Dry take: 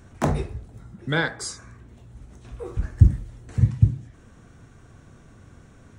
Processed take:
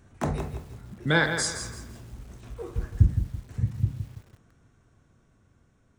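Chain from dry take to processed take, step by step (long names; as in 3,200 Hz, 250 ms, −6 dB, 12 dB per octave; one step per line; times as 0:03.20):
source passing by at 0:01.68, 6 m/s, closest 2.6 metres
feedback echo at a low word length 166 ms, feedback 35%, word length 9 bits, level −8 dB
level +5 dB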